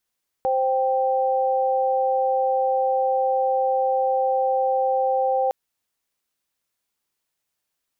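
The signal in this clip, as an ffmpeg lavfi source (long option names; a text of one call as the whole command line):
ffmpeg -f lavfi -i "aevalsrc='0.0891*(sin(2*PI*523.25*t)+sin(2*PI*783.99*t))':duration=5.06:sample_rate=44100" out.wav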